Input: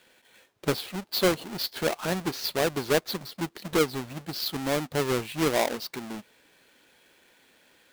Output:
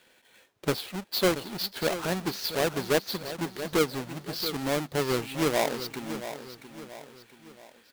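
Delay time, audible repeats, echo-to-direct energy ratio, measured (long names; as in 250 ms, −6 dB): 679 ms, 3, −10.5 dB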